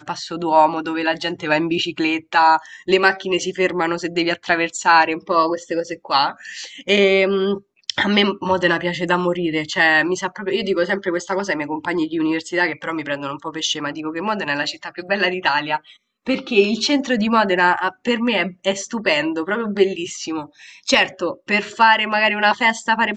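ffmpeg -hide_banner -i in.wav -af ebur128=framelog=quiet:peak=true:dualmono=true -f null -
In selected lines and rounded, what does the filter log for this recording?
Integrated loudness:
  I:         -15.9 LUFS
  Threshold: -26.0 LUFS
Loudness range:
  LRA:         4.4 LU
  Threshold: -36.2 LUFS
  LRA low:   -19.2 LUFS
  LRA high:  -14.8 LUFS
True peak:
  Peak:       -1.8 dBFS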